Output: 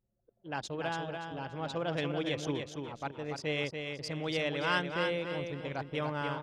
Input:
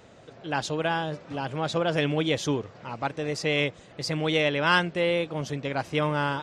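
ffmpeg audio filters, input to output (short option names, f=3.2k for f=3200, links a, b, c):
-af "anlmdn=6.31,aecho=1:1:287|574|861|1148:0.531|0.175|0.0578|0.0191,volume=-9dB"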